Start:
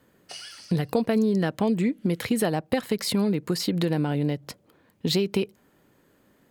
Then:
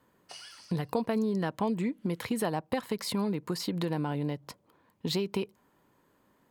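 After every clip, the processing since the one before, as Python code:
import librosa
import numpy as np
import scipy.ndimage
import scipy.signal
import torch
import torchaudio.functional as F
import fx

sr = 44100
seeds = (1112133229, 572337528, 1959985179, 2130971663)

y = fx.peak_eq(x, sr, hz=990.0, db=9.5, octaves=0.5)
y = y * 10.0 ** (-7.0 / 20.0)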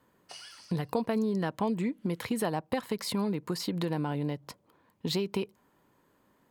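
y = x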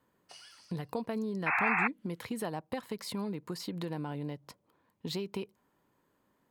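y = fx.spec_paint(x, sr, seeds[0], shape='noise', start_s=1.46, length_s=0.42, low_hz=690.0, high_hz=2700.0, level_db=-23.0)
y = y * 10.0 ** (-6.0 / 20.0)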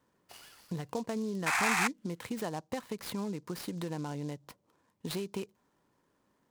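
y = fx.noise_mod_delay(x, sr, seeds[1], noise_hz=5200.0, depth_ms=0.034)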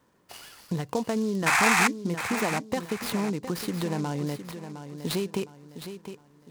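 y = fx.echo_feedback(x, sr, ms=711, feedback_pct=35, wet_db=-10.5)
y = y * 10.0 ** (7.5 / 20.0)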